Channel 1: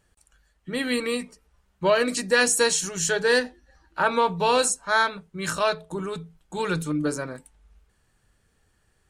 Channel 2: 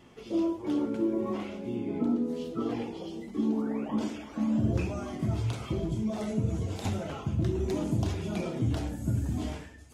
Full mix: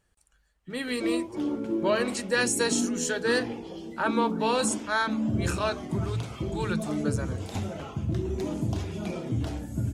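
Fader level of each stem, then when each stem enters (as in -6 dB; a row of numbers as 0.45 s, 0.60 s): -5.5 dB, -0.5 dB; 0.00 s, 0.70 s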